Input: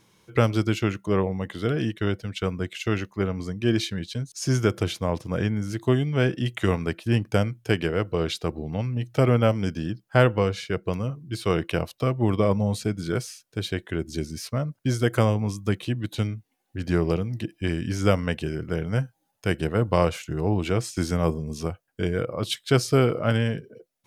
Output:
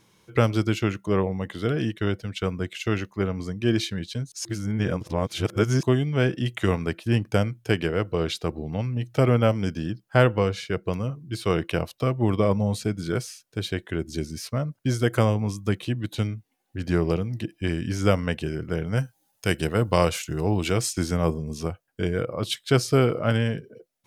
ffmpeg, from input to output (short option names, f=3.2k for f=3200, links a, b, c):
-filter_complex "[0:a]asettb=1/sr,asplit=3[a][b][c];[a]atrim=end=18.974[d];[b]atrim=start=18.97:end=20.93,asetpts=PTS-STARTPTS,afade=t=in:d=0.004:c=qsin,afade=t=out:st=1.956:d=0.004:c=qsin,highshelf=f=3.1k:g=9.5[e];[c]atrim=start=20.926[f];[d][e]acrossfade=d=0.004:c1=hsin:c2=qsin[g];[g][f]acrossfade=d=0.004:c1=qsin:c2=hsin,asplit=3[h][i][j];[h]atrim=end=4.452[k];[i]atrim=start=4.448:end=5.832,asetpts=PTS-STARTPTS,areverse[l];[j]atrim=start=5.828[m];[k][l]acrossfade=d=0.004:c1=hsin:c2=hsin[n];[n][m]acrossfade=d=0.004:c1=hsin:c2=hsin"